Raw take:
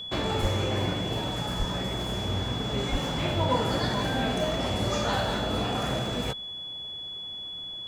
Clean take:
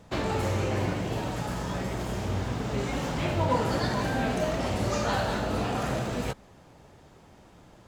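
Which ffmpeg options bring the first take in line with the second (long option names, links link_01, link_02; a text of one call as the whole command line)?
ffmpeg -i in.wav -filter_complex "[0:a]bandreject=frequency=3400:width=30,asplit=3[link_01][link_02][link_03];[link_01]afade=type=out:start_time=0.41:duration=0.02[link_04];[link_02]highpass=frequency=140:width=0.5412,highpass=frequency=140:width=1.3066,afade=type=in:start_time=0.41:duration=0.02,afade=type=out:start_time=0.53:duration=0.02[link_05];[link_03]afade=type=in:start_time=0.53:duration=0.02[link_06];[link_04][link_05][link_06]amix=inputs=3:normalize=0,asplit=3[link_07][link_08][link_09];[link_07]afade=type=out:start_time=1.58:duration=0.02[link_10];[link_08]highpass=frequency=140:width=0.5412,highpass=frequency=140:width=1.3066,afade=type=in:start_time=1.58:duration=0.02,afade=type=out:start_time=1.7:duration=0.02[link_11];[link_09]afade=type=in:start_time=1.7:duration=0.02[link_12];[link_10][link_11][link_12]amix=inputs=3:normalize=0,asplit=3[link_13][link_14][link_15];[link_13]afade=type=out:start_time=2.91:duration=0.02[link_16];[link_14]highpass=frequency=140:width=0.5412,highpass=frequency=140:width=1.3066,afade=type=in:start_time=2.91:duration=0.02,afade=type=out:start_time=3.03:duration=0.02[link_17];[link_15]afade=type=in:start_time=3.03:duration=0.02[link_18];[link_16][link_17][link_18]amix=inputs=3:normalize=0" out.wav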